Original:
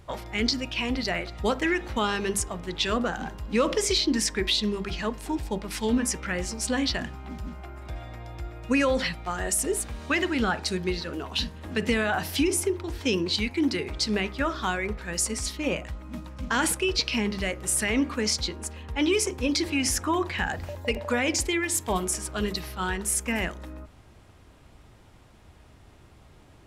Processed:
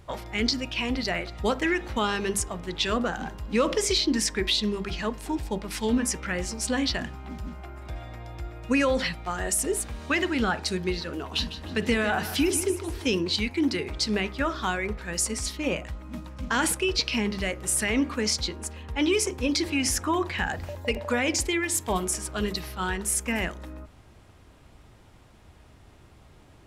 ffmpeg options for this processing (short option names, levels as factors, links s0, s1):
-filter_complex "[0:a]asettb=1/sr,asplit=3[s0][s1][s2];[s0]atrim=end=11.184[s3];[s1]atrim=start=11.18:end=13.19,asetpts=PTS-STARTPTS,afade=t=in:d=0.004:c=qsin,afade=t=out:st=2.006:d=0.004:c=qsin,aecho=1:1:152|304|456|608:0.251|0.0929|0.0344|0.0127,atrim=end_sample=88641[s4];[s2]atrim=start=13.186[s5];[s3][s4]acrossfade=d=0.004:c1=hsin:c2=qsin[s6];[s6][s5]acrossfade=d=0.004:c1=qsin:c2=hsin"